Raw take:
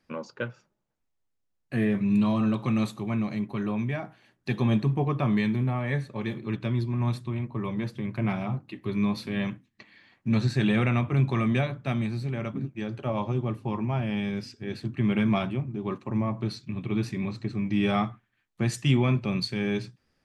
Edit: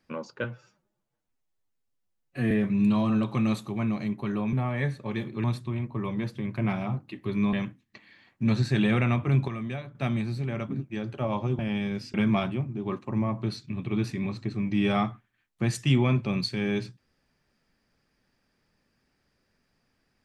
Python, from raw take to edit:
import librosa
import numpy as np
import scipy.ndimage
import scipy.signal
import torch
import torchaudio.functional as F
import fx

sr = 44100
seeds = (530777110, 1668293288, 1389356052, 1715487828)

y = fx.edit(x, sr, fx.stretch_span(start_s=0.44, length_s=1.38, factor=1.5),
    fx.cut(start_s=3.84, length_s=1.79),
    fx.cut(start_s=6.54, length_s=0.5),
    fx.cut(start_s=9.13, length_s=0.25),
    fx.clip_gain(start_s=11.33, length_s=0.47, db=-9.0),
    fx.cut(start_s=13.44, length_s=0.57),
    fx.cut(start_s=14.56, length_s=0.57), tone=tone)